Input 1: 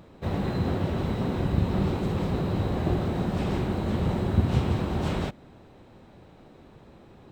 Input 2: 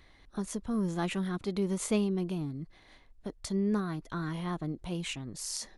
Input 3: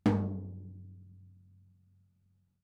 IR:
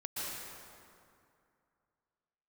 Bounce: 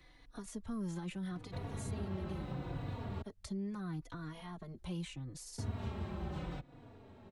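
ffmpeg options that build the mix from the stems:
-filter_complex "[0:a]highshelf=frequency=5100:gain=-8,adelay=1300,volume=-2dB,asplit=3[link_01][link_02][link_03];[link_01]atrim=end=3.22,asetpts=PTS-STARTPTS,afade=type=out:start_time=3.216:duration=0.004:curve=hsin[link_04];[link_02]atrim=start=3.22:end=5.58,asetpts=PTS-STARTPTS,volume=0[link_05];[link_03]atrim=start=5.58,asetpts=PTS-STARTPTS,afade=type=in:duration=0.004:curve=hsin[link_06];[link_04][link_05][link_06]concat=n=3:v=0:a=1[link_07];[1:a]alimiter=level_in=2dB:limit=-24dB:level=0:latency=1:release=24,volume=-2dB,volume=0.5dB,asplit=2[link_08][link_09];[2:a]acompressor=threshold=-45dB:ratio=2,adelay=1300,volume=2.5dB[link_10];[link_09]apad=whole_len=173456[link_11];[link_10][link_11]sidechaincompress=threshold=-39dB:ratio=8:attack=6.9:release=642[link_12];[link_07][link_08][link_12]amix=inputs=3:normalize=0,acrossover=split=170|540[link_13][link_14][link_15];[link_13]acompressor=threshold=-38dB:ratio=4[link_16];[link_14]acompressor=threshold=-47dB:ratio=4[link_17];[link_15]acompressor=threshold=-47dB:ratio=4[link_18];[link_16][link_17][link_18]amix=inputs=3:normalize=0,asplit=2[link_19][link_20];[link_20]adelay=3.5,afreqshift=-0.77[link_21];[link_19][link_21]amix=inputs=2:normalize=1"

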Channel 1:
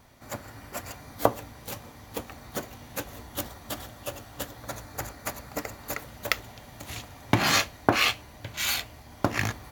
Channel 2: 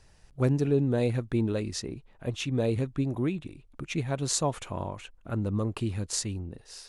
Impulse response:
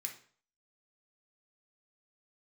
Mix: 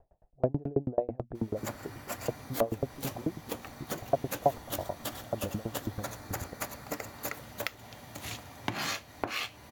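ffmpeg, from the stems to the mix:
-filter_complex "[0:a]highpass=83,acompressor=threshold=-30dB:ratio=6,adelay=1350,volume=-1dB[link_01];[1:a]lowpass=frequency=690:width_type=q:width=4.9,bandreject=frequency=60:width_type=h:width=6,bandreject=frequency=120:width_type=h:width=6,bandreject=frequency=180:width_type=h:width=6,bandreject=frequency=240:width_type=h:width=6,aeval=exprs='val(0)*pow(10,-35*if(lt(mod(9.2*n/s,1),2*abs(9.2)/1000),1-mod(9.2*n/s,1)/(2*abs(9.2)/1000),(mod(9.2*n/s,1)-2*abs(9.2)/1000)/(1-2*abs(9.2)/1000))/20)':channel_layout=same,volume=0dB[link_02];[link_01][link_02]amix=inputs=2:normalize=0"

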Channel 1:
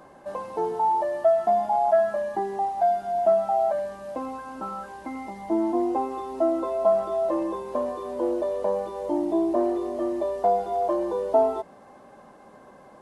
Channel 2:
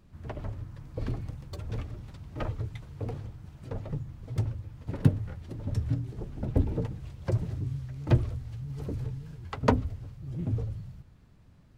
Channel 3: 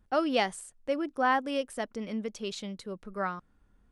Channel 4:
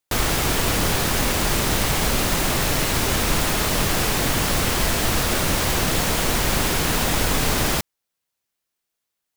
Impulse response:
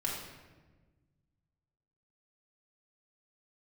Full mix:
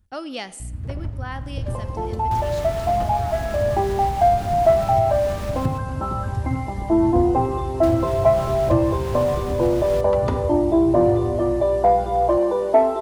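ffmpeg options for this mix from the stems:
-filter_complex "[0:a]acontrast=75,adelay=1400,volume=-2dB,asplit=2[link_01][link_02];[link_02]volume=-14.5dB[link_03];[1:a]aeval=exprs='val(0)+0.00708*(sin(2*PI*60*n/s)+sin(2*PI*2*60*n/s)/2+sin(2*PI*3*60*n/s)/3+sin(2*PI*4*60*n/s)/4+sin(2*PI*5*60*n/s)/5)':channel_layout=same,adelay=600,volume=0dB,asplit=2[link_04][link_05];[link_05]volume=-11dB[link_06];[2:a]highshelf=frequency=2700:gain=11.5,volume=-7dB,asplit=3[link_07][link_08][link_09];[link_08]volume=-18.5dB[link_10];[3:a]highshelf=frequency=7000:gain=-8,adelay=2200,volume=-9dB,asplit=3[link_11][link_12][link_13];[link_11]atrim=end=5.78,asetpts=PTS-STARTPTS,afade=type=out:start_time=5.776:duration=0.004:curve=hsin[link_14];[link_12]atrim=start=5.78:end=7.83,asetpts=PTS-STARTPTS,volume=0[link_15];[link_13]atrim=start=7.83,asetpts=PTS-STARTPTS,afade=type=in:duration=0.004:curve=hsin[link_16];[link_14][link_15][link_16]concat=n=3:v=0:a=1[link_17];[link_09]apad=whole_len=635710[link_18];[link_01][link_18]sidechaincompress=threshold=-49dB:ratio=3:attack=16:release=364[link_19];[link_04][link_07][link_17]amix=inputs=3:normalize=0,equalizer=frequency=75:width_type=o:width=2.3:gain=15,acompressor=threshold=-27dB:ratio=3,volume=0dB[link_20];[4:a]atrim=start_sample=2205[link_21];[link_03][link_06][link_10]amix=inputs=3:normalize=0[link_22];[link_22][link_21]afir=irnorm=-1:irlink=0[link_23];[link_19][link_20][link_23]amix=inputs=3:normalize=0"

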